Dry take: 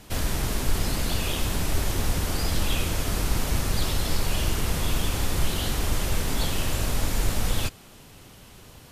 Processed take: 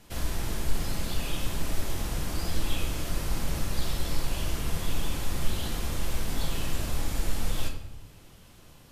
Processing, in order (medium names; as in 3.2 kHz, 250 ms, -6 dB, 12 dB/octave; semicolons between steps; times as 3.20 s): simulated room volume 230 m³, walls mixed, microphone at 0.78 m; trim -8 dB